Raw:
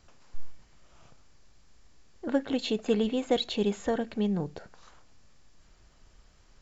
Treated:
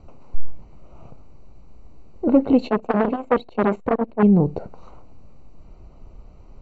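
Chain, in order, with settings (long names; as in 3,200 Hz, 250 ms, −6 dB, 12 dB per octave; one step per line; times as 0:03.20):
in parallel at −3.5 dB: sine wavefolder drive 7 dB, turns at −12.5 dBFS
on the sum: moving average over 26 samples
0:02.67–0:04.23: saturating transformer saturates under 740 Hz
level +5 dB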